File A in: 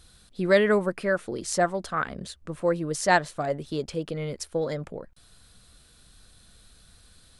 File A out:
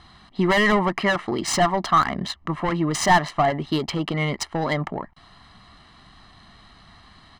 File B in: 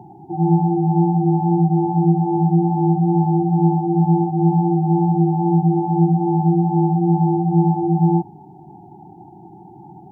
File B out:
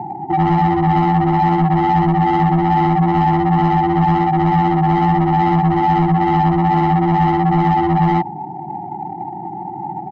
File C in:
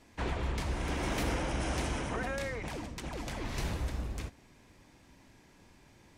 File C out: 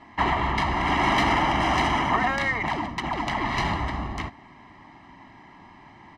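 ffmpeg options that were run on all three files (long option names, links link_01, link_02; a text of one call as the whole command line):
ffmpeg -i in.wav -filter_complex "[0:a]highshelf=frequency=3500:gain=5.5,adynamicsmooth=sensitivity=6:basefreq=2400,asplit=2[link_01][link_02];[link_02]highpass=frequency=720:poles=1,volume=25dB,asoftclip=type=tanh:threshold=-4dB[link_03];[link_01][link_03]amix=inputs=2:normalize=0,lowpass=frequency=1700:poles=1,volume=-6dB,acompressor=threshold=-14dB:ratio=3,aecho=1:1:1:0.82,volume=-1.5dB" out.wav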